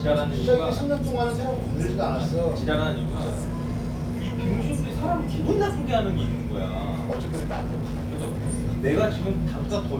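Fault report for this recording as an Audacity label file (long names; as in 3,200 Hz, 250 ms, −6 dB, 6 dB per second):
3.030000	4.360000	clipping −24 dBFS
7.110000	8.430000	clipping −25.5 dBFS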